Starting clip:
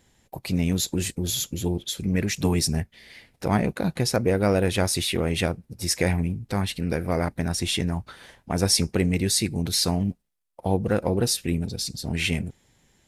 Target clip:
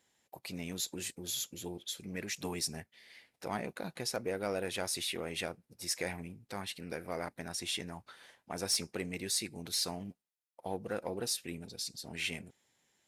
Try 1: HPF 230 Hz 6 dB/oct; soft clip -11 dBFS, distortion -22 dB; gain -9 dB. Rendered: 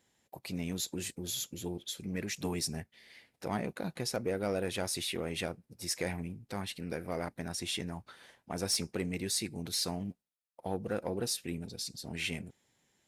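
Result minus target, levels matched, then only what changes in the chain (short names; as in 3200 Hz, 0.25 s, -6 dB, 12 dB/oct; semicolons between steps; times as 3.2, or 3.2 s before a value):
250 Hz band +3.5 dB
change: HPF 530 Hz 6 dB/oct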